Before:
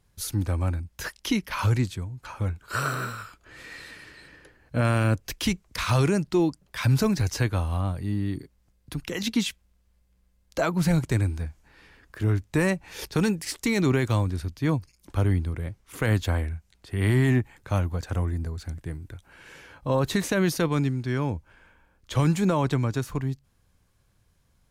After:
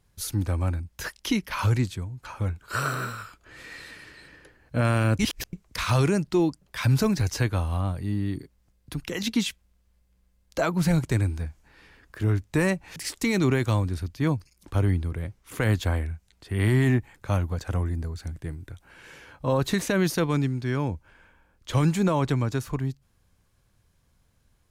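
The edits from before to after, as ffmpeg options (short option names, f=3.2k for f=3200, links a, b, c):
-filter_complex "[0:a]asplit=4[a][b][c][d];[a]atrim=end=5.192[e];[b]atrim=start=5.188:end=5.532,asetpts=PTS-STARTPTS,areverse[f];[c]atrim=start=5.528:end=12.962[g];[d]atrim=start=13.378[h];[e][f]acrossfade=d=0.004:c1=hsin:c2=hsin[i];[i][g]acrossfade=d=0.004:c1=hsin:c2=hsin[j];[j][h]acrossfade=d=0.004:c1=hsin:c2=hsin"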